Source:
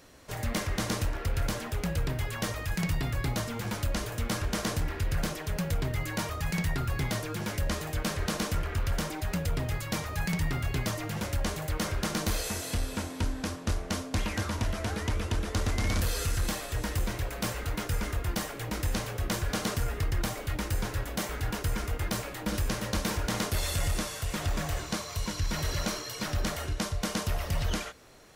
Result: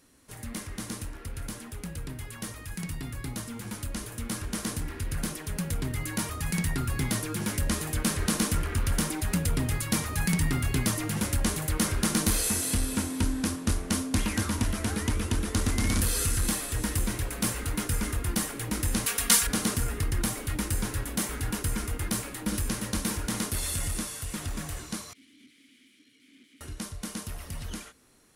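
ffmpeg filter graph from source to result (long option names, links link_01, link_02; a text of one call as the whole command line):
ffmpeg -i in.wav -filter_complex "[0:a]asettb=1/sr,asplit=3[link_01][link_02][link_03];[link_01]atrim=end=19.064[link_04];[link_02]atrim=start=19.06:end=19.47,asetpts=PTS-STARTPTS,afade=type=in:duration=0.004:curve=qsin,afade=type=out:start_time=0.406:duration=0.004:curve=qsin,tiltshelf=frequency=740:gain=-9,aecho=1:1:4.3:0.82,atrim=end_sample=18081[link_05];[link_03]atrim=start=19.466[link_06];[link_04][link_05]acrossfade=duration=0.004:curve1=hsin:curve2=qsin[link_07];[link_07][link_06]acrossfade=duration=0.004:curve1=qsin:curve2=hsin,asettb=1/sr,asplit=3[link_08][link_09][link_10];[link_08]atrim=end=25.134[link_11];[link_09]atrim=start=25.13:end=26.61,asetpts=PTS-STARTPTS,afade=type=in:duration=0.004:curve=qsin,afade=type=out:start_time=1.476:duration=0.004:curve=qsin,aeval=exprs='(mod(44.7*val(0)+1,2)-1)/44.7':channel_layout=same,asplit=3[link_12][link_13][link_14];[link_12]bandpass=frequency=270:width_type=q:width=8,volume=0dB[link_15];[link_13]bandpass=frequency=2290:width_type=q:width=8,volume=-6dB[link_16];[link_14]bandpass=frequency=3010:width_type=q:width=8,volume=-9dB[link_17];[link_15][link_16][link_17]amix=inputs=3:normalize=0[link_18];[link_10]atrim=start=26.606[link_19];[link_11][link_18]acrossfade=duration=0.004:curve1=hsin:curve2=qsin[link_20];[link_20][link_19]acrossfade=duration=0.004:curve1=qsin:curve2=hsin,dynaudnorm=framelen=700:gausssize=17:maxgain=11dB,equalizer=frequency=250:width_type=o:width=0.67:gain=7,equalizer=frequency=630:width_type=o:width=0.67:gain=-6,equalizer=frequency=10000:width_type=o:width=0.67:gain=12,volume=-8.5dB" out.wav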